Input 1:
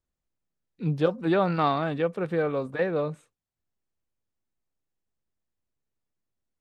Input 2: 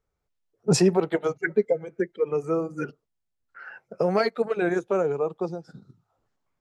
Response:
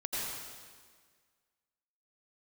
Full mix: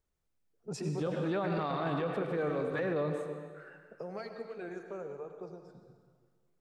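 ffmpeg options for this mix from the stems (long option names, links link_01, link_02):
-filter_complex "[0:a]volume=-1dB,asplit=2[link_01][link_02];[link_02]volume=-12.5dB[link_03];[1:a]acompressor=threshold=-44dB:ratio=1.5,volume=-12.5dB,asplit=3[link_04][link_05][link_06];[link_05]volume=-8dB[link_07];[link_06]apad=whole_len=291340[link_08];[link_01][link_08]sidechaincompress=threshold=-50dB:ratio=8:attack=16:release=246[link_09];[2:a]atrim=start_sample=2205[link_10];[link_03][link_07]amix=inputs=2:normalize=0[link_11];[link_11][link_10]afir=irnorm=-1:irlink=0[link_12];[link_09][link_04][link_12]amix=inputs=3:normalize=0,alimiter=level_in=1dB:limit=-24dB:level=0:latency=1:release=31,volume=-1dB"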